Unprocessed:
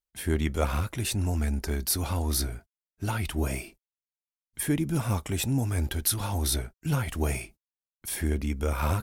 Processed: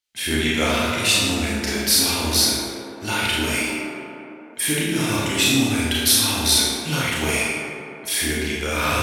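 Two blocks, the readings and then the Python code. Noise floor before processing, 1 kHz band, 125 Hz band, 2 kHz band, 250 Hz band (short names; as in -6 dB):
under -85 dBFS, +9.0 dB, -0.5 dB, +16.0 dB, +8.0 dB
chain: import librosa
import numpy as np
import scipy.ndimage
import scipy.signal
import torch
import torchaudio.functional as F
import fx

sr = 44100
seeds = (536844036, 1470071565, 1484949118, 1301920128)

y = fx.weighting(x, sr, curve='D')
y = fx.echo_tape(y, sr, ms=114, feedback_pct=87, wet_db=-5.5, lp_hz=2700.0, drive_db=11.0, wow_cents=12)
y = fx.rev_schroeder(y, sr, rt60_s=0.77, comb_ms=26, drr_db=-4.5)
y = y * 10.0 ** (1.0 / 20.0)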